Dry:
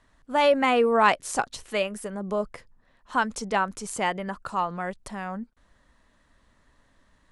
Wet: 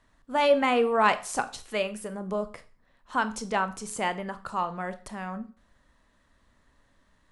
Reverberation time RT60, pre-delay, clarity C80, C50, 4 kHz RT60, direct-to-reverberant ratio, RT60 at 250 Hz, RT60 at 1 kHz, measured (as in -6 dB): 0.40 s, 23 ms, 20.5 dB, 15.5 dB, 0.40 s, 11.0 dB, 0.35 s, 0.40 s